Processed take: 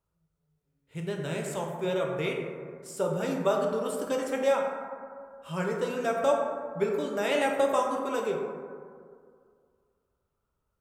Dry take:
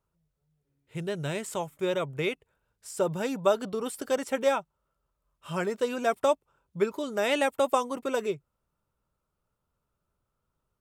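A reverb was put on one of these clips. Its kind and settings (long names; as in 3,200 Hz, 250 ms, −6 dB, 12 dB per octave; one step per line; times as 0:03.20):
dense smooth reverb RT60 2.1 s, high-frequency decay 0.3×, DRR 0 dB
level −3.5 dB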